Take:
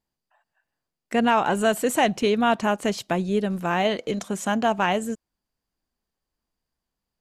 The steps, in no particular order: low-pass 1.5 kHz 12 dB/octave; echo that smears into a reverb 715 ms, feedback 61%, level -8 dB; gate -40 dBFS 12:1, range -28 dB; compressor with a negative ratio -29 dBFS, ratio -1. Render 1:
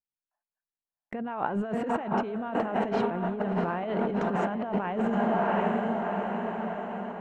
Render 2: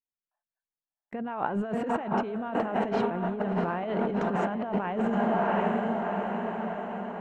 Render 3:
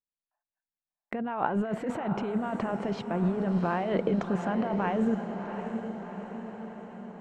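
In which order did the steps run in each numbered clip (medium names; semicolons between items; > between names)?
echo that smears into a reverb > gate > low-pass > compressor with a negative ratio; low-pass > gate > echo that smears into a reverb > compressor with a negative ratio; low-pass > compressor with a negative ratio > gate > echo that smears into a reverb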